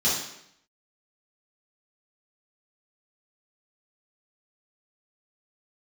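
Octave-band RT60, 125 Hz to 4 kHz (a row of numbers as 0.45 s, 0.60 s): 0.80 s, 0.75 s, 0.75 s, 0.75 s, 0.75 s, 0.70 s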